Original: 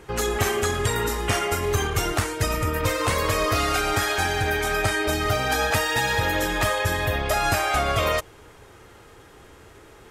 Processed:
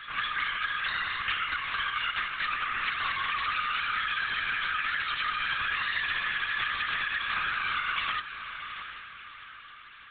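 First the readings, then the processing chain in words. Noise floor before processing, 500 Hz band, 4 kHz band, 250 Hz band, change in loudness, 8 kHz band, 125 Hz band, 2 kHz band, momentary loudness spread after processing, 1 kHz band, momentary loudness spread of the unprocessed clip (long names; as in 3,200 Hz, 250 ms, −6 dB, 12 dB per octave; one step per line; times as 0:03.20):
−49 dBFS, −30.5 dB, −3.5 dB, −24.5 dB, −6.0 dB, below −40 dB, −26.5 dB, −2.0 dB, 12 LU, −6.5 dB, 3 LU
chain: flanger 2 Hz, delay 0.4 ms, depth 5.2 ms, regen −65%
random phases in short frames
in parallel at +1.5 dB: speech leveller
on the sum: Butterworth high-pass 1,100 Hz 48 dB per octave
feedback delay with all-pass diffusion 714 ms, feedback 43%, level −15 dB
linear-prediction vocoder at 8 kHz whisper
on a send: backwards echo 205 ms −16 dB
on the sum: downward compressor, threshold −27 dBFS, peak gain reduction 8 dB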